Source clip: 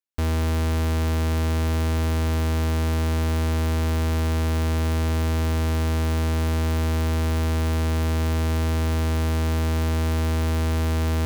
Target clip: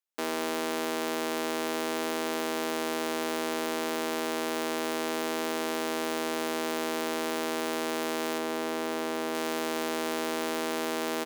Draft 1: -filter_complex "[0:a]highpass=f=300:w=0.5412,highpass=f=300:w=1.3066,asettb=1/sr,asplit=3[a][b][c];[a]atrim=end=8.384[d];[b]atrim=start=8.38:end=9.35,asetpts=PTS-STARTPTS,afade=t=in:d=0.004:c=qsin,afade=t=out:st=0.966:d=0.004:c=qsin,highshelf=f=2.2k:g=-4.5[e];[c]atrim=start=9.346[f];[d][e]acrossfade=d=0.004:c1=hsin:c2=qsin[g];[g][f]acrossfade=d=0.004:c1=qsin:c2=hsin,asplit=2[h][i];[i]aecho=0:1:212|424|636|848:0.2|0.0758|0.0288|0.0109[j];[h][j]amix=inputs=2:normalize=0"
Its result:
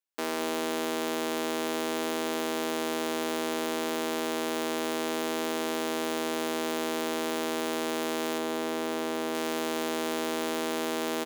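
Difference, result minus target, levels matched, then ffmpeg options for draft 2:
echo-to-direct +11 dB
-filter_complex "[0:a]highpass=f=300:w=0.5412,highpass=f=300:w=1.3066,asettb=1/sr,asplit=3[a][b][c];[a]atrim=end=8.384[d];[b]atrim=start=8.38:end=9.35,asetpts=PTS-STARTPTS,afade=t=in:d=0.004:c=qsin,afade=t=out:st=0.966:d=0.004:c=qsin,highshelf=f=2.2k:g=-4.5[e];[c]atrim=start=9.346[f];[d][e]acrossfade=d=0.004:c1=hsin:c2=qsin[g];[g][f]acrossfade=d=0.004:c1=qsin:c2=hsin,asplit=2[h][i];[i]aecho=0:1:212|424:0.0562|0.0214[j];[h][j]amix=inputs=2:normalize=0"

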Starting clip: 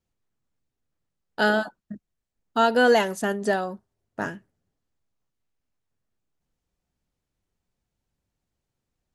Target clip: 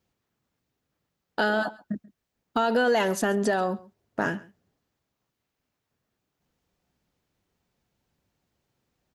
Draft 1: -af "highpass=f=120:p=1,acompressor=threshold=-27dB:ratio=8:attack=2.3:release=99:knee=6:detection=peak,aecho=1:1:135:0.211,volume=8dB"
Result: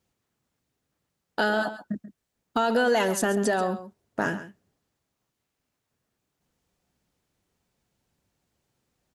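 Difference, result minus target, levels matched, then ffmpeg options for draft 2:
echo-to-direct +8.5 dB; 8000 Hz band +4.0 dB
-af "highpass=f=120:p=1,equalizer=f=9.1k:w=1.1:g=-6,acompressor=threshold=-27dB:ratio=8:attack=2.3:release=99:knee=6:detection=peak,aecho=1:1:135:0.0794,volume=8dB"

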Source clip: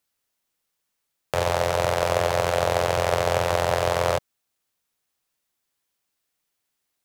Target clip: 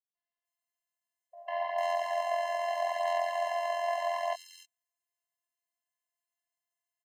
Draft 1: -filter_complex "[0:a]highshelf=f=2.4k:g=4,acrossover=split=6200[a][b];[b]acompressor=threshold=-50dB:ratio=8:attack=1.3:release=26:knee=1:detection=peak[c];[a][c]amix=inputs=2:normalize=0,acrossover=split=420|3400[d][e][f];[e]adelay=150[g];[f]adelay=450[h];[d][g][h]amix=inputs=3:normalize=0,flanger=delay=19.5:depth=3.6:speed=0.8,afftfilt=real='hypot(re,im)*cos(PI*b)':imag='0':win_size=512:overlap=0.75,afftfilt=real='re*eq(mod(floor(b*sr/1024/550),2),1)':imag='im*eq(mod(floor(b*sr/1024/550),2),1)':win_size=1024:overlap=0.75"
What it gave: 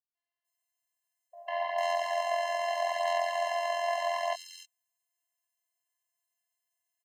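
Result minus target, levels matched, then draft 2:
4000 Hz band +4.0 dB
-filter_complex "[0:a]highshelf=f=2.4k:g=-3.5,acrossover=split=6200[a][b];[b]acompressor=threshold=-50dB:ratio=8:attack=1.3:release=26:knee=1:detection=peak[c];[a][c]amix=inputs=2:normalize=0,acrossover=split=420|3400[d][e][f];[e]adelay=150[g];[f]adelay=450[h];[d][g][h]amix=inputs=3:normalize=0,flanger=delay=19.5:depth=3.6:speed=0.8,afftfilt=real='hypot(re,im)*cos(PI*b)':imag='0':win_size=512:overlap=0.75,afftfilt=real='re*eq(mod(floor(b*sr/1024/550),2),1)':imag='im*eq(mod(floor(b*sr/1024/550),2),1)':win_size=1024:overlap=0.75"

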